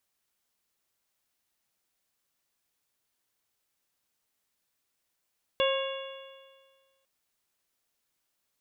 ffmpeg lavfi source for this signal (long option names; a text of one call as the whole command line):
ffmpeg -f lavfi -i "aevalsrc='0.0708*pow(10,-3*t/1.64)*sin(2*PI*537.91*t)+0.0299*pow(10,-3*t/1.64)*sin(2*PI*1081.28*t)+0.015*pow(10,-3*t/1.64)*sin(2*PI*1635.46*t)+0.0141*pow(10,-3*t/1.64)*sin(2*PI*2205.65*t)+0.0335*pow(10,-3*t/1.64)*sin(2*PI*2796.79*t)+0.0282*pow(10,-3*t/1.64)*sin(2*PI*3413.5*t)':duration=1.45:sample_rate=44100" out.wav